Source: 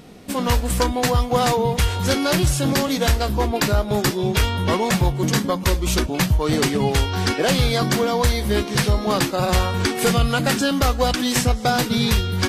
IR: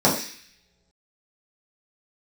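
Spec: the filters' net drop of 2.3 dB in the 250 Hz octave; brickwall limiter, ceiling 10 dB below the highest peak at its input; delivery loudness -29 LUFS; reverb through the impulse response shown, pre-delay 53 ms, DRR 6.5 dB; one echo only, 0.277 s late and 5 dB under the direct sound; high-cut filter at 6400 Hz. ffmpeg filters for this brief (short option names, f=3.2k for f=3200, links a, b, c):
-filter_complex "[0:a]lowpass=6.4k,equalizer=f=250:t=o:g=-3,alimiter=limit=-18dB:level=0:latency=1,aecho=1:1:277:0.562,asplit=2[a][b];[1:a]atrim=start_sample=2205,adelay=53[c];[b][c]afir=irnorm=-1:irlink=0,volume=-26dB[d];[a][d]amix=inputs=2:normalize=0,volume=-5.5dB"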